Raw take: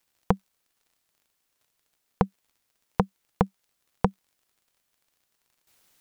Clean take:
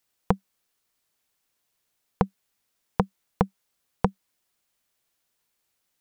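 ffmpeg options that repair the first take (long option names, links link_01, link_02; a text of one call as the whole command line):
ffmpeg -i in.wav -af "adeclick=threshold=4,asetnsamples=nb_out_samples=441:pad=0,asendcmd='5.67 volume volume -11.5dB',volume=0dB" out.wav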